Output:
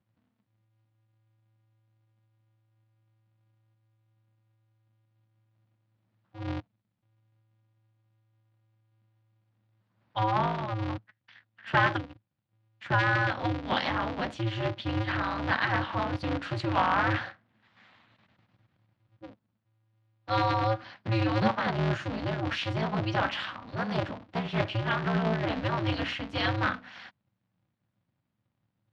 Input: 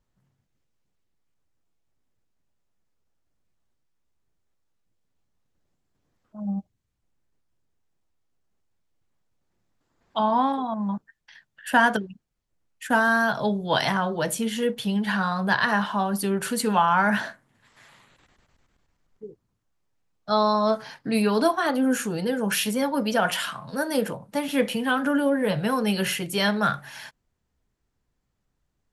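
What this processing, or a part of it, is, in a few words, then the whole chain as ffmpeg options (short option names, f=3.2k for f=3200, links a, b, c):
ring modulator pedal into a guitar cabinet: -af "aeval=exprs='val(0)*sgn(sin(2*PI*110*n/s))':c=same,highpass=91,equalizer=f=110:t=q:w=4:g=8,equalizer=f=200:t=q:w=4:g=8,equalizer=f=410:t=q:w=4:g=-9,lowpass=f=4.2k:w=0.5412,lowpass=f=4.2k:w=1.3066,volume=-5dB"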